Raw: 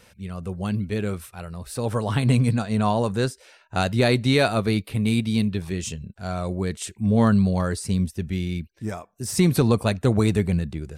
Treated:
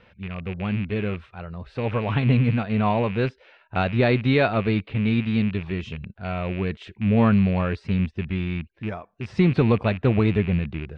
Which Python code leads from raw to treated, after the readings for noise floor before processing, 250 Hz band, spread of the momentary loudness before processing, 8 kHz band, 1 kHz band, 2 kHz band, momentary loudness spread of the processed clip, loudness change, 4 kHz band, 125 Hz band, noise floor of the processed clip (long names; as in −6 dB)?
−56 dBFS, 0.0 dB, 14 LU, below −25 dB, 0.0 dB, +1.5 dB, 14 LU, 0.0 dB, −5.0 dB, 0.0 dB, −58 dBFS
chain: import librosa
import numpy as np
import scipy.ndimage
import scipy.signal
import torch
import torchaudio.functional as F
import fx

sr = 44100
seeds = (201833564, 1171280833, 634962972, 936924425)

y = fx.rattle_buzz(x, sr, strikes_db=-28.0, level_db=-25.0)
y = scipy.signal.sosfilt(scipy.signal.butter(4, 3200.0, 'lowpass', fs=sr, output='sos'), y)